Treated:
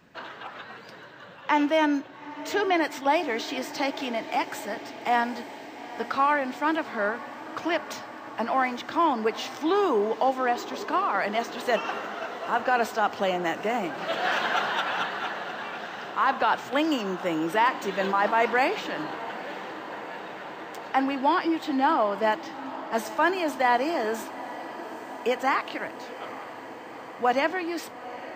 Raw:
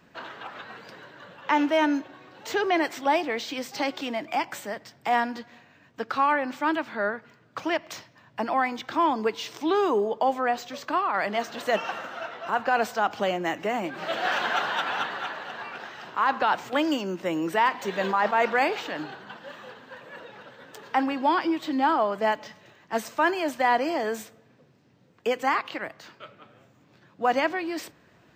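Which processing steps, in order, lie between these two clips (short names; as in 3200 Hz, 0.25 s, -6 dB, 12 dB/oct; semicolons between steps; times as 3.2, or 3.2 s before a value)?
diffused feedback echo 0.853 s, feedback 78%, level -15 dB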